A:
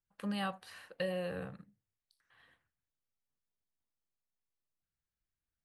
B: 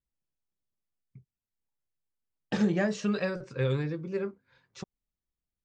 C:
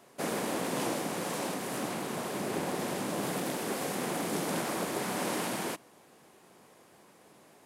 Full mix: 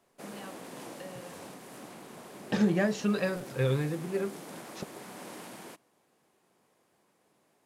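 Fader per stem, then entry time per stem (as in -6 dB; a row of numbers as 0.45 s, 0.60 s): -10.5 dB, +0.5 dB, -12.0 dB; 0.00 s, 0.00 s, 0.00 s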